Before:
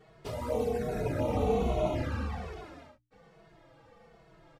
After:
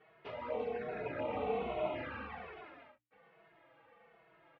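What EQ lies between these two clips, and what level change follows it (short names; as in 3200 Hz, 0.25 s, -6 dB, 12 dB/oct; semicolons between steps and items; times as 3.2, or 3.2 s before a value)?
HPF 630 Hz 6 dB/oct; ladder low-pass 3200 Hz, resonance 35%; air absorption 110 m; +5.0 dB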